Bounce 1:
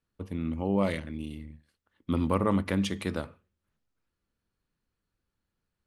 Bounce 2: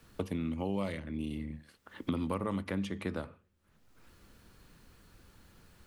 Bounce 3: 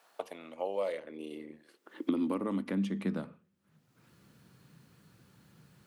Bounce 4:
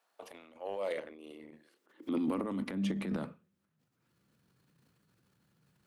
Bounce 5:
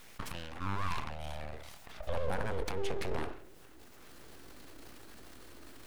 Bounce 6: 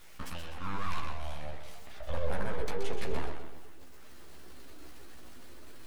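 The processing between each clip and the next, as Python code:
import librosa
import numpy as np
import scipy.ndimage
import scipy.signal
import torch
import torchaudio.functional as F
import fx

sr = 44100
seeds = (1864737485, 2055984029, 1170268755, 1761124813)

y1 = fx.band_squash(x, sr, depth_pct=100)
y1 = y1 * 10.0 ** (-6.0 / 20.0)
y2 = fx.filter_sweep_highpass(y1, sr, from_hz=710.0, to_hz=140.0, start_s=0.14, end_s=3.88, q=3.6)
y2 = y2 * 10.0 ** (-3.0 / 20.0)
y3 = fx.transient(y2, sr, attack_db=-6, sustain_db=10)
y3 = fx.upward_expand(y3, sr, threshold_db=-50.0, expansion=1.5)
y3 = y3 * 10.0 ** (-1.0 / 20.0)
y4 = np.abs(y3)
y4 = fx.env_flatten(y4, sr, amount_pct=50)
y4 = y4 * 10.0 ** (1.0 / 20.0)
y5 = fx.echo_feedback(y4, sr, ms=126, feedback_pct=49, wet_db=-8)
y5 = fx.chorus_voices(y5, sr, voices=4, hz=0.49, base_ms=14, depth_ms=2.8, mix_pct=45)
y5 = y5 * 10.0 ** (2.0 / 20.0)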